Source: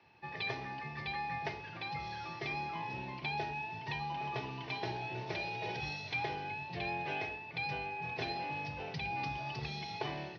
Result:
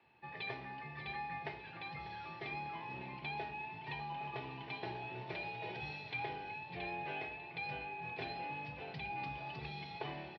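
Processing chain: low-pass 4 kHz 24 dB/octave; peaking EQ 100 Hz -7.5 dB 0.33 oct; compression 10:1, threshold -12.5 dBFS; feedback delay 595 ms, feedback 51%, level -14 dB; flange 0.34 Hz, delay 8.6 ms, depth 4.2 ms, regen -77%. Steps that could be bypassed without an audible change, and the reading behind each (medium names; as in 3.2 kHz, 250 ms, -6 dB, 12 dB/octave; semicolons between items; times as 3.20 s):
compression, threshold -12.5 dBFS: peak at its input -23.0 dBFS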